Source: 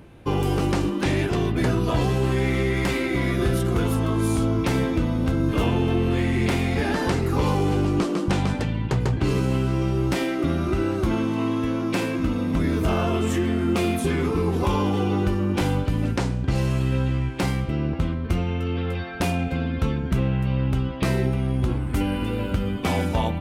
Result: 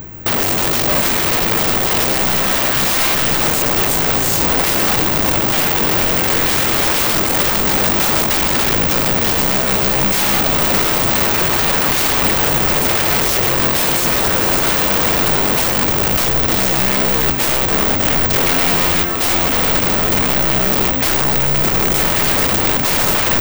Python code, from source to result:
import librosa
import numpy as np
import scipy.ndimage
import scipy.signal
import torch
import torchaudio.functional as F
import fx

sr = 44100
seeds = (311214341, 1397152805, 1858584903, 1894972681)

p1 = fx.high_shelf(x, sr, hz=5400.0, db=9.5)
p2 = fx.over_compress(p1, sr, threshold_db=-25.0, ratio=-0.5)
p3 = p1 + (p2 * 10.0 ** (2.5 / 20.0))
p4 = fx.formant_shift(p3, sr, semitones=-5)
p5 = (np.mod(10.0 ** (16.0 / 20.0) * p4 + 1.0, 2.0) - 1.0) / 10.0 ** (16.0 / 20.0)
p6 = p5 + fx.echo_diffused(p5, sr, ms=516, feedback_pct=74, wet_db=-11.0, dry=0)
p7 = (np.kron(scipy.signal.resample_poly(p6, 1, 2), np.eye(2)[0]) * 2)[:len(p6)]
y = p7 * 10.0 ** (2.5 / 20.0)